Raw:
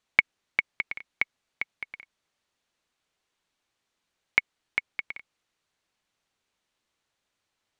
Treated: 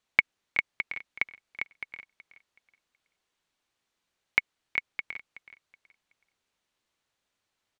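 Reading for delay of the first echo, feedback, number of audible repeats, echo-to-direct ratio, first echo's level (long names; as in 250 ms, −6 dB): 374 ms, 29%, 2, −14.5 dB, −15.0 dB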